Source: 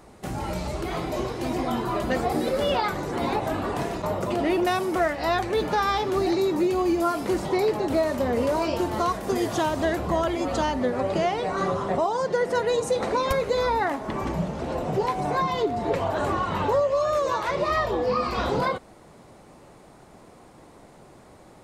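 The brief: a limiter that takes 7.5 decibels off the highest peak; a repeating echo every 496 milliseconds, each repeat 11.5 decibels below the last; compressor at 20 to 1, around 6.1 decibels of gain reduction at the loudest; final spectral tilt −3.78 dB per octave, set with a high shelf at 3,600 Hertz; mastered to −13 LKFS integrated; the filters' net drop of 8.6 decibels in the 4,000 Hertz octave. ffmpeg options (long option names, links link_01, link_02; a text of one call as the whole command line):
ffmpeg -i in.wav -af "highshelf=frequency=3600:gain=-6.5,equalizer=frequency=4000:width_type=o:gain=-7,acompressor=threshold=-25dB:ratio=20,alimiter=limit=-23dB:level=0:latency=1,aecho=1:1:496|992|1488:0.266|0.0718|0.0194,volume=18dB" out.wav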